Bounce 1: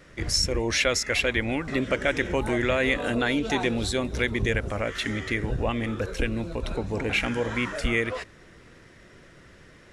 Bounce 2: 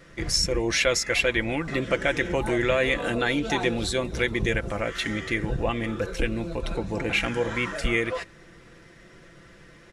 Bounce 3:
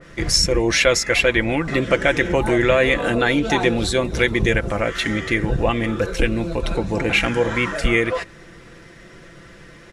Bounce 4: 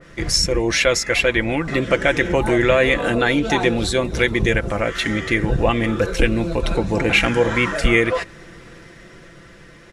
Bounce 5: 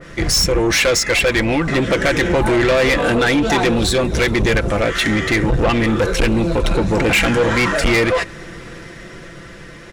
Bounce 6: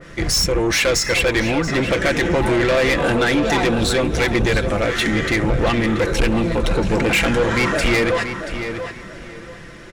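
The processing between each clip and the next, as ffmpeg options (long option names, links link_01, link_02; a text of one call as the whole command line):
ffmpeg -i in.wav -af "aecho=1:1:5.9:0.43" out.wav
ffmpeg -i in.wav -af "adynamicequalizer=threshold=0.0178:dfrequency=2300:dqfactor=0.7:tfrequency=2300:tqfactor=0.7:attack=5:release=100:ratio=0.375:range=1.5:mode=cutabove:tftype=highshelf,volume=7dB" out.wav
ffmpeg -i in.wav -af "dynaudnorm=framelen=130:gausssize=17:maxgain=11.5dB,volume=-1dB" out.wav
ffmpeg -i in.wav -af "asoftclip=type=tanh:threshold=-18.5dB,volume=7.5dB" out.wav
ffmpeg -i in.wav -filter_complex "[0:a]asplit=2[link_01][link_02];[link_02]adelay=681,lowpass=frequency=3900:poles=1,volume=-8.5dB,asplit=2[link_03][link_04];[link_04]adelay=681,lowpass=frequency=3900:poles=1,volume=0.25,asplit=2[link_05][link_06];[link_06]adelay=681,lowpass=frequency=3900:poles=1,volume=0.25[link_07];[link_01][link_03][link_05][link_07]amix=inputs=4:normalize=0,volume=-2.5dB" out.wav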